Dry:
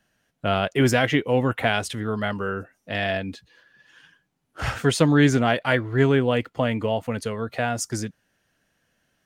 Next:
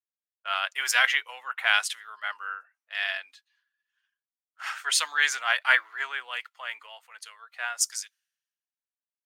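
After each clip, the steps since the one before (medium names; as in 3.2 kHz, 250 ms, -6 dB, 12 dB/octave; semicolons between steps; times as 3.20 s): high-pass 1.1 kHz 24 dB/octave; three bands expanded up and down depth 100%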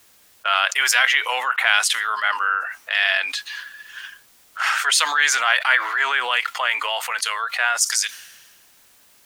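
level flattener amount 70%; trim +2 dB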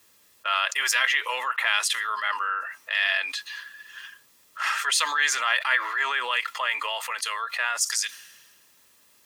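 comb of notches 750 Hz; trim -4 dB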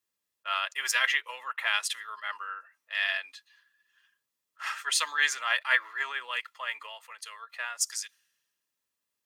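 upward expansion 2.5:1, over -37 dBFS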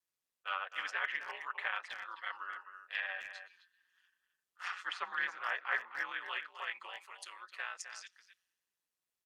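ring modulator 90 Hz; low-pass that closes with the level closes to 1.6 kHz, closed at -28.5 dBFS; speakerphone echo 260 ms, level -9 dB; trim -3 dB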